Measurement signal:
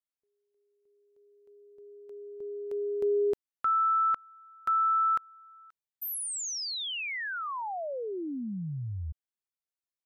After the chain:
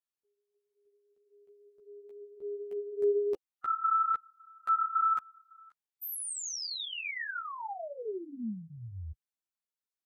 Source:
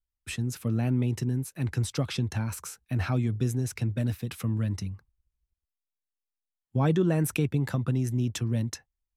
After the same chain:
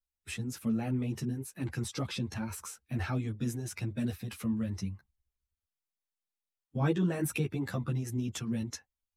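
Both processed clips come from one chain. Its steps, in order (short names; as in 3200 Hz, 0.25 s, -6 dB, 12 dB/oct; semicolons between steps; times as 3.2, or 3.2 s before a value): bin magnitudes rounded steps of 15 dB; low shelf 70 Hz -7.5 dB; ensemble effect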